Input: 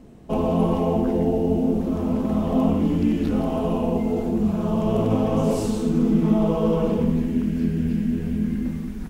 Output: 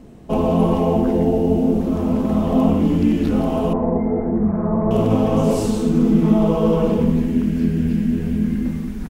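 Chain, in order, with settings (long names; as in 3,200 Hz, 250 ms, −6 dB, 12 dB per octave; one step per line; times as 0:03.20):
0:03.73–0:04.91: elliptic low-pass filter 2,000 Hz, stop band 40 dB
far-end echo of a speakerphone 110 ms, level −22 dB
level +4 dB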